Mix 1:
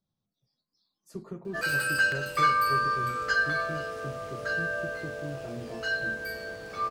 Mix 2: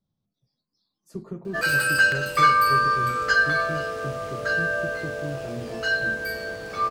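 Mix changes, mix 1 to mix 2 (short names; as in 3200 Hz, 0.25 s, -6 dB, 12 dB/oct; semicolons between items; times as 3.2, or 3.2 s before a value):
speech: add low shelf 470 Hz +6 dB; background +6.0 dB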